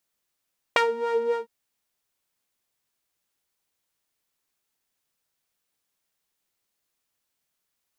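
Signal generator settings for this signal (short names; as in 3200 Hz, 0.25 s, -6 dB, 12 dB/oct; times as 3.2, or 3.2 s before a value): synth patch with filter wobble A#4, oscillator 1 saw, sub -27 dB, filter bandpass, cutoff 210 Hz, Q 1.6, filter envelope 3.5 oct, filter decay 0.07 s, filter sustain 30%, attack 2.9 ms, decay 0.11 s, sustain -9.5 dB, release 0.13 s, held 0.58 s, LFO 3.7 Hz, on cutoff 1 oct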